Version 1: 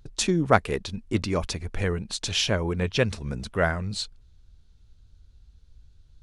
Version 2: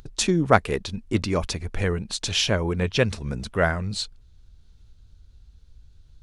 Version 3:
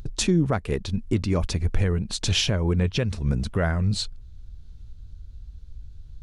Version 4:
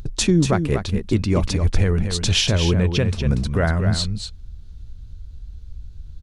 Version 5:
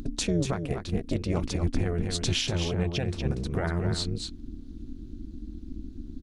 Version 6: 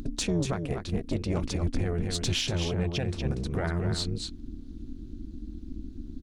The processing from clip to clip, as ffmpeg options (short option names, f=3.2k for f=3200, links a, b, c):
-af "acompressor=mode=upward:threshold=-47dB:ratio=2.5,volume=2dB"
-af "lowshelf=f=270:g=10,alimiter=limit=-12dB:level=0:latency=1:release=319"
-af "aecho=1:1:238:0.422,volume=4dB"
-af "alimiter=limit=-14dB:level=0:latency=1:release=418,tremolo=f=260:d=0.857"
-af "asoftclip=type=tanh:threshold=-16dB"